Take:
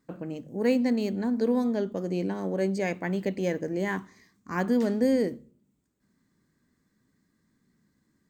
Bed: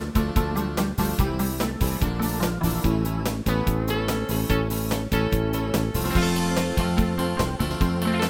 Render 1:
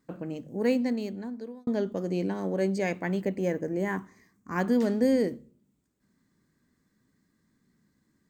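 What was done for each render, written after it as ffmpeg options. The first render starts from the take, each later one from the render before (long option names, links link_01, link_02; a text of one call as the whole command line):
ffmpeg -i in.wav -filter_complex "[0:a]asettb=1/sr,asplit=3[link_01][link_02][link_03];[link_01]atrim=end=3.214[link_04];[link_02]atrim=start=3.21:end=4.56,asetpts=PTS-STARTPTS,afade=type=in:duration=0.004:curve=qsin,afade=type=out:start_time=1.346:duration=0.004:curve=qsin,equalizer=frequency=3900:width=1.1:gain=-9.5[link_05];[link_03]atrim=start=4.556[link_06];[link_04][link_05]acrossfade=duration=0.004:curve1=hsin:curve2=qsin[link_07];[link_07][link_06]acrossfade=duration=0.004:curve1=qsin:curve2=hsin,asplit=2[link_08][link_09];[link_08]atrim=end=1.67,asetpts=PTS-STARTPTS,afade=type=out:start_time=0.55:duration=1.12[link_10];[link_09]atrim=start=1.67,asetpts=PTS-STARTPTS,afade=type=in:duration=0.004:curve=hsin[link_11];[link_10][link_11]concat=n=2:v=0:a=1" out.wav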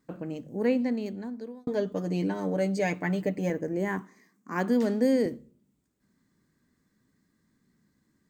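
ffmpeg -i in.wav -filter_complex "[0:a]asettb=1/sr,asplit=3[link_01][link_02][link_03];[link_01]atrim=end=0.504[link_04];[link_02]atrim=start=0.5:end=1.06,asetpts=PTS-STARTPTS,afade=type=in:duration=0.004:curve=qsin,afade=type=out:start_time=0.556:duration=0.004:curve=qsin,acrossover=split=3500[link_05][link_06];[link_06]acompressor=threshold=-56dB:ratio=4:attack=1:release=60[link_07];[link_05][link_07]amix=inputs=2:normalize=0[link_08];[link_03]atrim=start=1.056[link_09];[link_04][link_08]acrossfade=duration=0.004:curve1=hsin:curve2=qsin[link_10];[link_10][link_09]acrossfade=duration=0.004:curve1=qsin:curve2=hsin,asettb=1/sr,asplit=3[link_11][link_12][link_13];[link_11]atrim=end=1.634[link_14];[link_12]atrim=start=1.63:end=3.5,asetpts=PTS-STARTPTS,afade=type=in:duration=0.004:curve=qsin,afade=type=out:start_time=1.866:duration=0.004:curve=qsin,aecho=1:1:6.7:0.65,atrim=end_sample=82467[link_15];[link_13]atrim=start=3.496[link_16];[link_14][link_15]acrossfade=duration=0.004:curve1=hsin:curve2=qsin[link_17];[link_17][link_16]acrossfade=duration=0.004:curve1=qsin:curve2=hsin,asettb=1/sr,asplit=3[link_18][link_19][link_20];[link_18]atrim=end=4.014[link_21];[link_19]atrim=start=4.01:end=5.26,asetpts=PTS-STARTPTS,afade=type=in:duration=0.004:curve=qsin,afade=type=out:start_time=1.246:duration=0.004:curve=qsin,highpass=frequency=170:width=0.5412,highpass=frequency=170:width=1.3066[link_22];[link_20]atrim=start=5.256[link_23];[link_21][link_22]acrossfade=duration=0.004:curve1=hsin:curve2=qsin[link_24];[link_24][link_23]acrossfade=duration=0.004:curve1=qsin:curve2=hsin" out.wav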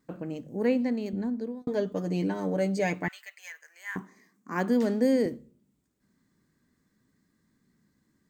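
ffmpeg -i in.wav -filter_complex "[0:a]asettb=1/sr,asplit=3[link_01][link_02][link_03];[link_01]atrim=end=1.134[link_04];[link_02]atrim=start=1.13:end=1.62,asetpts=PTS-STARTPTS,afade=type=in:duration=0.004:curve=qsin,afade=type=out:start_time=0.486:duration=0.004:curve=qsin,lowshelf=frequency=430:gain=8.5[link_05];[link_03]atrim=start=1.616[link_06];[link_04][link_05]acrossfade=duration=0.004:curve1=hsin:curve2=qsin[link_07];[link_07][link_06]acrossfade=duration=0.004:curve1=qsin:curve2=hsin,asettb=1/sr,asplit=3[link_08][link_09][link_10];[link_08]atrim=end=3.084[link_11];[link_09]atrim=start=3.08:end=3.96,asetpts=PTS-STARTPTS,afade=type=in:duration=0.004:curve=qsin,afade=type=out:start_time=0.876:duration=0.004:curve=qsin,highpass=frequency=1400:width=0.5412,highpass=frequency=1400:width=1.3066[link_12];[link_10]atrim=start=3.956[link_13];[link_11][link_12]acrossfade=duration=0.004:curve1=hsin:curve2=qsin[link_14];[link_14][link_13]acrossfade=duration=0.004:curve1=qsin:curve2=hsin" out.wav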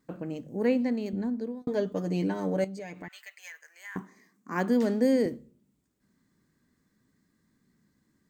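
ffmpeg -i in.wav -filter_complex "[0:a]asettb=1/sr,asplit=3[link_01][link_02][link_03];[link_01]atrim=end=2.644[link_04];[link_02]atrim=start=2.64:end=3.96,asetpts=PTS-STARTPTS,afade=type=in:duration=0.004:curve=qsin,afade=type=out:start_time=1.316:duration=0.004:curve=qsin,acompressor=threshold=-39dB:ratio=4:attack=3.2:release=140:knee=1:detection=peak[link_05];[link_03]atrim=start=3.956[link_06];[link_04][link_05]acrossfade=duration=0.004:curve1=hsin:curve2=qsin[link_07];[link_07][link_06]acrossfade=duration=0.004:curve1=qsin:curve2=hsin" out.wav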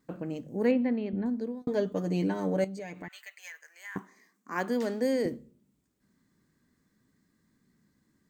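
ffmpeg -i in.wav -filter_complex "[0:a]asettb=1/sr,asplit=3[link_01][link_02][link_03];[link_01]atrim=end=0.714[link_04];[link_02]atrim=start=0.71:end=1.26,asetpts=PTS-STARTPTS,afade=type=in:duration=0.004:curve=qsin,afade=type=out:start_time=0.546:duration=0.004:curve=qsin,lowpass=frequency=3300:width=0.5412,lowpass=frequency=3300:width=1.3066[link_05];[link_03]atrim=start=1.256[link_06];[link_04][link_05]acrossfade=duration=0.004:curve1=hsin:curve2=qsin[link_07];[link_07][link_06]acrossfade=duration=0.004:curve1=qsin:curve2=hsin,asettb=1/sr,asplit=3[link_08][link_09][link_10];[link_08]atrim=end=1.874[link_11];[link_09]atrim=start=1.87:end=3.39,asetpts=PTS-STARTPTS,afade=type=in:duration=0.004:curve=qsin,afade=type=out:start_time=1.516:duration=0.004:curve=qsin,bandreject=frequency=5100:width=13[link_12];[link_10]atrim=start=3.386[link_13];[link_11][link_12]acrossfade=duration=0.004:curve1=hsin:curve2=qsin[link_14];[link_14][link_13]acrossfade=duration=0.004:curve1=qsin:curve2=hsin,asettb=1/sr,asplit=3[link_15][link_16][link_17];[link_15]atrim=end=3.984[link_18];[link_16]atrim=start=3.98:end=5.25,asetpts=PTS-STARTPTS,afade=type=in:duration=0.004:curve=qsin,afade=type=out:start_time=1.266:duration=0.004:curve=qsin,highpass=frequency=450:poles=1[link_19];[link_17]atrim=start=5.246[link_20];[link_18][link_19]acrossfade=duration=0.004:curve1=hsin:curve2=qsin[link_21];[link_21][link_20]acrossfade=duration=0.004:curve1=qsin:curve2=hsin" out.wav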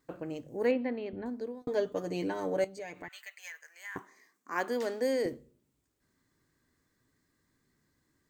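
ffmpeg -i in.wav -af "equalizer=frequency=200:width_type=o:width=0.65:gain=-13.5" out.wav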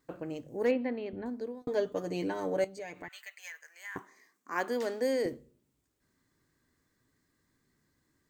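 ffmpeg -i in.wav -af "asoftclip=type=hard:threshold=-18dB" out.wav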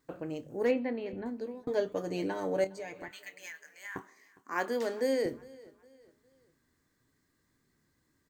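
ffmpeg -i in.wav -filter_complex "[0:a]asplit=2[link_01][link_02];[link_02]adelay=26,volume=-13dB[link_03];[link_01][link_03]amix=inputs=2:normalize=0,aecho=1:1:409|818|1227:0.075|0.0285|0.0108" out.wav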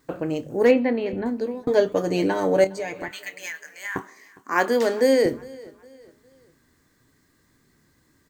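ffmpeg -i in.wav -af "volume=11.5dB" out.wav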